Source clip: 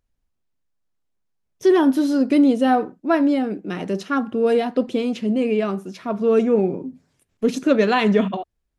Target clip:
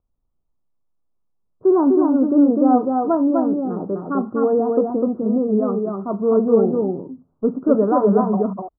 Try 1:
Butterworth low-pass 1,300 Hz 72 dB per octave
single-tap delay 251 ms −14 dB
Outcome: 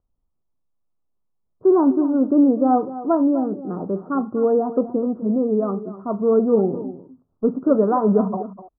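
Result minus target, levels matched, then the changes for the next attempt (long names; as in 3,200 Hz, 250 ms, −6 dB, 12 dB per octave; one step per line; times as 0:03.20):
echo-to-direct −11 dB
change: single-tap delay 251 ms −3 dB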